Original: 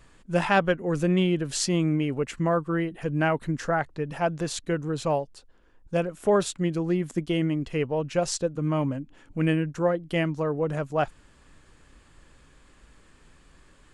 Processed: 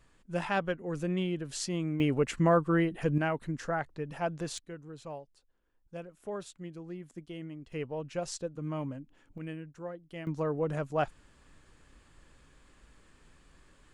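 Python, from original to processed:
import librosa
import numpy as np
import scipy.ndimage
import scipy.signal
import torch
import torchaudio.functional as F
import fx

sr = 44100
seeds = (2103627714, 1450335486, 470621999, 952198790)

y = fx.gain(x, sr, db=fx.steps((0.0, -9.0), (2.0, 0.0), (3.18, -7.0), (4.58, -17.0), (7.72, -10.0), (9.38, -17.0), (10.27, -4.5)))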